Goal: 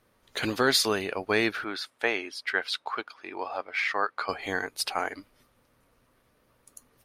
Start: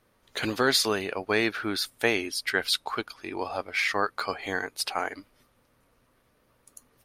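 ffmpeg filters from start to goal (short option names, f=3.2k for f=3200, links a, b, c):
-filter_complex "[0:a]asettb=1/sr,asplit=3[a][b][c];[a]atrim=end=1.644[d];[b]atrim=start=1.64:end=4.29,asetpts=PTS-STARTPTS,afade=t=in:d=0.004:c=qsin,afade=t=out:st=2.646:d=0.004:c=qsin,bandpass=f=1.2k:t=q:w=0.51:csg=0[e];[c]atrim=start=4.286[f];[d][e]acrossfade=d=0.004:c1=hsin:c2=qsin[g];[g][f]acrossfade=d=0.004:c1=qsin:c2=hsin"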